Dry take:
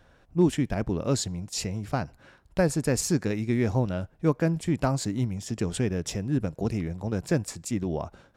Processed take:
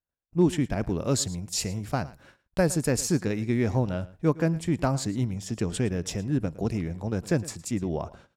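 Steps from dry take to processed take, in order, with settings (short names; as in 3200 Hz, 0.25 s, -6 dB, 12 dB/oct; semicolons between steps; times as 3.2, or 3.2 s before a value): gate -52 dBFS, range -39 dB; 0.81–2.91 high shelf 7900 Hz +8 dB; echo 0.111 s -19 dB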